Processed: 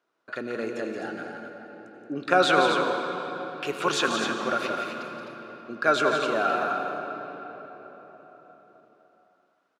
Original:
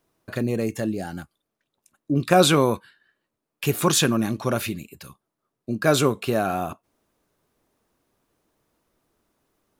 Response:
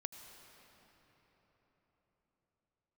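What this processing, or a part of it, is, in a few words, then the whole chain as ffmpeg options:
station announcement: -filter_complex "[0:a]highpass=370,lowpass=4500,equalizer=frequency=1400:width_type=o:width=0.26:gain=11,aecho=1:1:174.9|256.6:0.447|0.447[link_01];[1:a]atrim=start_sample=2205[link_02];[link_01][link_02]afir=irnorm=-1:irlink=0"

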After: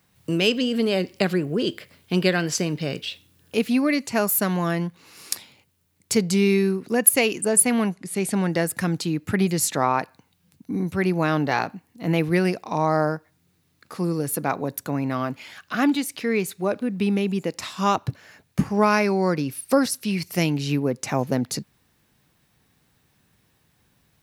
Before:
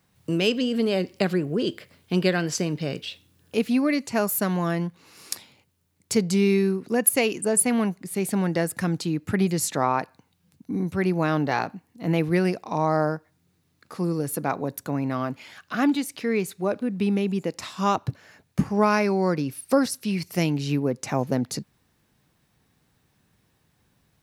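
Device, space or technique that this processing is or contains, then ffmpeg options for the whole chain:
presence and air boost: -filter_complex "[0:a]asettb=1/sr,asplit=3[link_01][link_02][link_03];[link_01]atrim=end=7.914[link_04];[link_02]atrim=start=7.91:end=8.5,asetpts=PTS-STARTPTS,afade=type=in:duration=0.004:curve=qsin,afade=type=out:start_time=0.586:duration=0.004:curve=qsin,lowpass=frequency=11000:width=0.5412,lowpass=frequency=11000:width=1.3066[link_05];[link_03]atrim=start=8.496[link_06];[link_04][link_05]acrossfade=duration=0.004:curve1=hsin:curve2=qsin[link_07];[link_07][link_06]acrossfade=duration=0.004:curve1=qsin:curve2=hsin,equalizer=frequency=2600:width_type=o:width=1.9:gain=2.5,highshelf=frequency=10000:gain=5.5,volume=1dB"

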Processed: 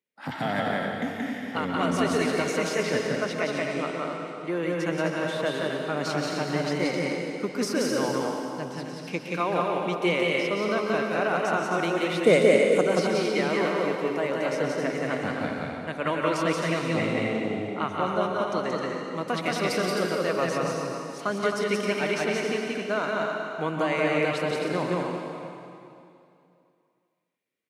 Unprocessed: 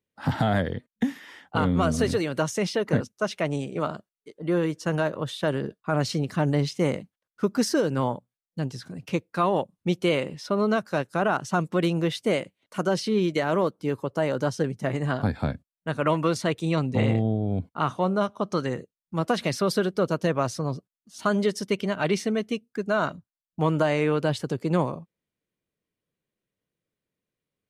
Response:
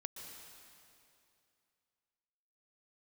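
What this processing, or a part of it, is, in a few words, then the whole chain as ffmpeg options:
stadium PA: -filter_complex "[0:a]asettb=1/sr,asplit=3[link_01][link_02][link_03];[link_01]atrim=end=12.194[link_04];[link_02]atrim=start=12.19:end=12.85,asetpts=PTS-STARTPTS,afade=type=in:duration=0.004:curve=qsin,afade=type=out:start_time=0.656:duration=0.004:curve=qsin,equalizer=frequency=125:width_type=o:width=1:gain=9,equalizer=frequency=250:width_type=o:width=1:gain=5,equalizer=frequency=500:width_type=o:width=1:gain=11,equalizer=frequency=2000:width_type=o:width=1:gain=4,equalizer=frequency=4000:width_type=o:width=1:gain=-4,equalizer=frequency=8000:width_type=o:width=1:gain=12[link_05];[link_03]atrim=start=12.846[link_06];[link_04][link_05]acrossfade=duration=0.004:curve1=hsin:curve2=qsin[link_07];[link_07][link_06]acrossfade=duration=0.004:curve1=qsin:curve2=hsin,highpass=220,equalizer=frequency=2200:width_type=o:width=0.54:gain=7.5,aecho=1:1:177.8|262.4:0.794|0.501[link_08];[1:a]atrim=start_sample=2205[link_09];[link_08][link_09]afir=irnorm=-1:irlink=0"

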